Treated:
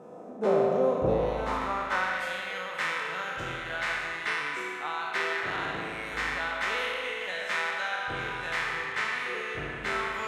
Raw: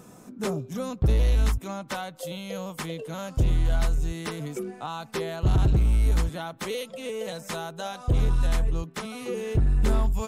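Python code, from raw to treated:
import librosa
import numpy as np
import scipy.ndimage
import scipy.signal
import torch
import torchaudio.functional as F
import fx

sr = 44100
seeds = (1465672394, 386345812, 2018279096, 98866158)

y = fx.spec_trails(x, sr, decay_s=1.51)
y = fx.highpass(y, sr, hz=200.0, slope=6, at=(5.33, 6.14))
y = fx.rev_spring(y, sr, rt60_s=2.8, pass_ms=(38,), chirp_ms=25, drr_db=1.5)
y = fx.filter_sweep_bandpass(y, sr, from_hz=590.0, to_hz=1800.0, start_s=1.06, end_s=2.27, q=1.9)
y = F.gain(torch.from_numpy(y), 6.5).numpy()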